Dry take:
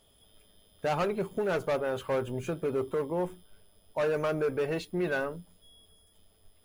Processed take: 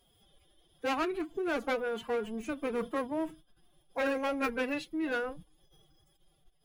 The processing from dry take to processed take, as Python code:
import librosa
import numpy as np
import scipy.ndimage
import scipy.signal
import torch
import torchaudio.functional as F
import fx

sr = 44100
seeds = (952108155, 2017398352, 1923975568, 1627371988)

y = fx.pitch_keep_formants(x, sr, semitones=10.0)
y = fx.dynamic_eq(y, sr, hz=2200.0, q=0.81, threshold_db=-44.0, ratio=4.0, max_db=4)
y = y * 10.0 ** (-3.0 / 20.0)